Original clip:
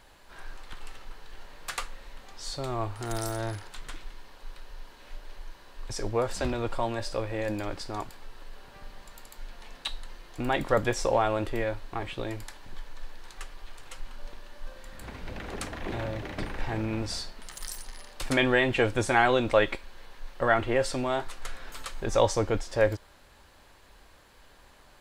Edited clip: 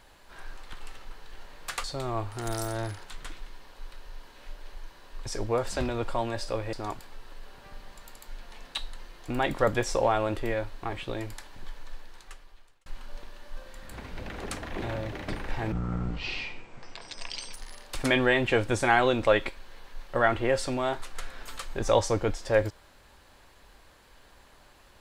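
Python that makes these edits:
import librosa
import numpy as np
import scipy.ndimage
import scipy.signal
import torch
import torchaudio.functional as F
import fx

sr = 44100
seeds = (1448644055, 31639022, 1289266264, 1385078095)

y = fx.edit(x, sr, fx.cut(start_s=1.84, length_s=0.64),
    fx.cut(start_s=7.37, length_s=0.46),
    fx.fade_out_span(start_s=12.93, length_s=1.03),
    fx.speed_span(start_s=16.82, length_s=0.98, speed=0.54), tone=tone)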